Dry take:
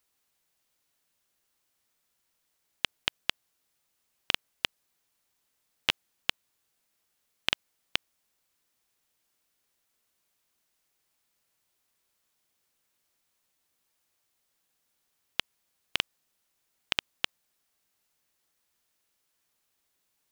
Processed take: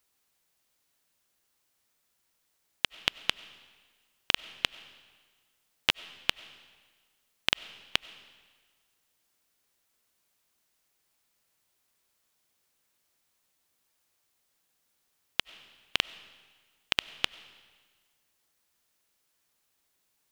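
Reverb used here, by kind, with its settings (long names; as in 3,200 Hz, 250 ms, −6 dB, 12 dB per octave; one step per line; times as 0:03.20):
comb and all-pass reverb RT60 1.5 s, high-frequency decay 0.95×, pre-delay 55 ms, DRR 17.5 dB
level +1.5 dB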